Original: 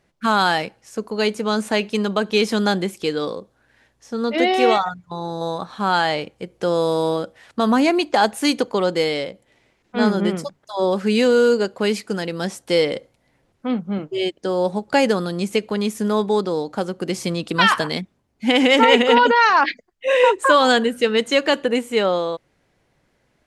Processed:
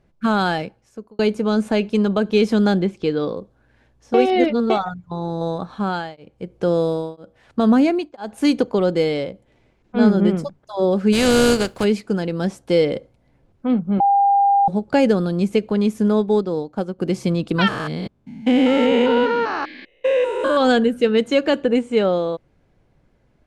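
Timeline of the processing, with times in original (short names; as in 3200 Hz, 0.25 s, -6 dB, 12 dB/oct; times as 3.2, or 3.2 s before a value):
0.48–1.19 fade out
2.79–3.37 LPF 5300 Hz
4.14–4.7 reverse
5.67–8.38 beating tremolo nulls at 1 Hz
11.12–11.83 spectral contrast lowered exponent 0.47
14–14.68 bleep 800 Hz -9.5 dBFS
16.19–16.99 upward expander, over -38 dBFS
17.68–20.57 stepped spectrum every 0.2 s
21.61–22.02 steep low-pass 9400 Hz
whole clip: tilt -2.5 dB/oct; notch 1900 Hz, Q 15; dynamic EQ 1000 Hz, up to -6 dB, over -32 dBFS, Q 3.1; gain -1 dB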